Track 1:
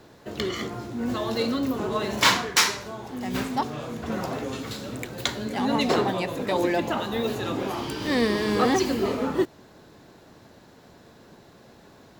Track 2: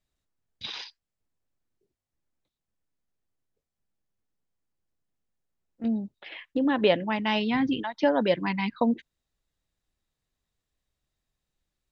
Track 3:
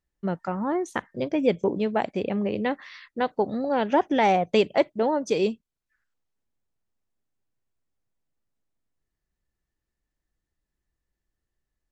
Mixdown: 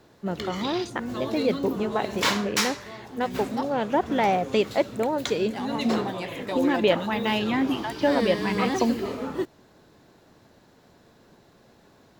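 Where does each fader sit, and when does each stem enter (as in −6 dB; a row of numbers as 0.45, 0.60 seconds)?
−5.0, +0.5, −2.0 decibels; 0.00, 0.00, 0.00 seconds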